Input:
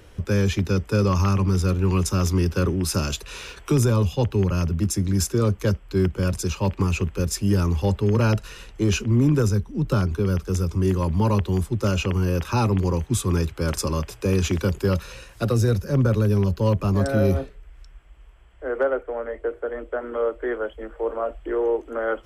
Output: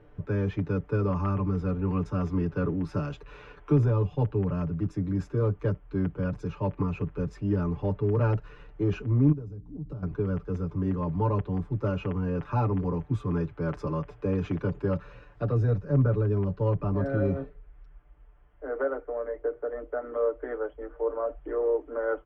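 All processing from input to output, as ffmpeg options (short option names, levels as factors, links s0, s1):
-filter_complex "[0:a]asettb=1/sr,asplit=3[s0][s1][s2];[s0]atrim=end=9.324[s3];[s1]atrim=start=9.32:end=10.03,asetpts=PTS-STARTPTS,afade=t=in:d=0.004:c=qsin,afade=t=out:st=0.706:d=0.004:c=qsin,equalizer=f=1600:w=0.41:g=-12,acompressor=threshold=0.0316:ratio=8:attack=3.2:release=140:knee=1:detection=peak,aeval=exprs='val(0)+0.00708*(sin(2*PI*60*n/s)+sin(2*PI*2*60*n/s)/2+sin(2*PI*3*60*n/s)/3+sin(2*PI*4*60*n/s)/4+sin(2*PI*5*60*n/s)/5)':c=same[s4];[s2]atrim=start=10.026[s5];[s3][s4]acrossfade=d=0.004:c1=hsin:c2=qsin[s6];[s6][s5]acrossfade=d=0.004:c1=qsin:c2=hsin,lowpass=1400,aecho=1:1:6.8:0.76,volume=0.473"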